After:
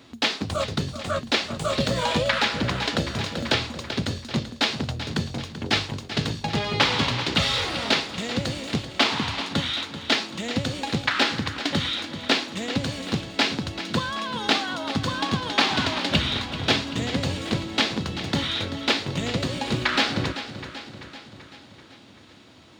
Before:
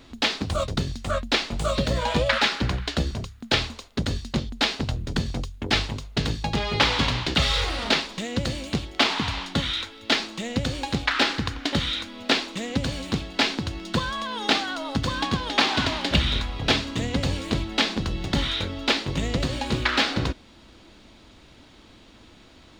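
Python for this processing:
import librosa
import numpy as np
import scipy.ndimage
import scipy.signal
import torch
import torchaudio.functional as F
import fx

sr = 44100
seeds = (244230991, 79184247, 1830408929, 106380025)

y = scipy.signal.sosfilt(scipy.signal.butter(4, 86.0, 'highpass', fs=sr, output='sos'), x)
y = fx.echo_feedback(y, sr, ms=386, feedback_pct=58, wet_db=-12)
y = fx.band_squash(y, sr, depth_pct=70, at=(1.8, 3.91))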